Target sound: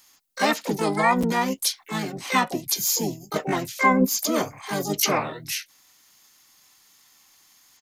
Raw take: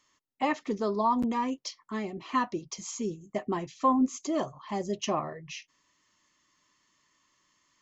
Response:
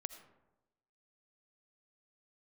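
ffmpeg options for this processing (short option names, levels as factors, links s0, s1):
-filter_complex "[0:a]asplit=4[s0][s1][s2][s3];[s1]asetrate=33038,aresample=44100,atempo=1.33484,volume=0.708[s4];[s2]asetrate=66075,aresample=44100,atempo=0.66742,volume=0.2[s5];[s3]asetrate=88200,aresample=44100,atempo=0.5,volume=0.501[s6];[s0][s4][s5][s6]amix=inputs=4:normalize=0,crystalizer=i=3.5:c=0,volume=1.33"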